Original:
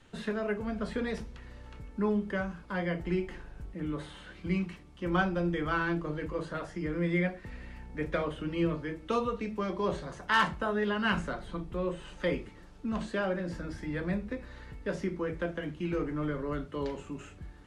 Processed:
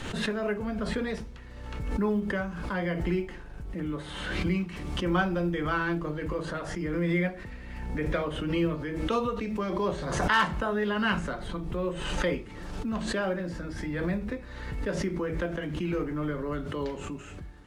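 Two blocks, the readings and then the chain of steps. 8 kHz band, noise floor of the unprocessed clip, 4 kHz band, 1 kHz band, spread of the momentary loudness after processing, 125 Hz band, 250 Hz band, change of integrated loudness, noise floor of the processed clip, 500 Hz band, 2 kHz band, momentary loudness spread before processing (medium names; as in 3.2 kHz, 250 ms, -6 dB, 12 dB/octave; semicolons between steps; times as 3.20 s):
+9.5 dB, -52 dBFS, +4.5 dB, +2.5 dB, 11 LU, +3.5 dB, +3.0 dB, +2.5 dB, -43 dBFS, +2.5 dB, +2.5 dB, 13 LU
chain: short-mantissa float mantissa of 6-bit; swell ahead of each attack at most 37 dB/s; trim +1.5 dB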